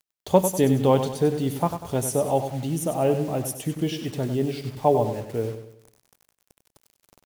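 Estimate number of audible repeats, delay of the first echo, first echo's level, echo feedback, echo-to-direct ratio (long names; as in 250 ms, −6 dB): 4, 97 ms, −9.0 dB, 42%, −8.0 dB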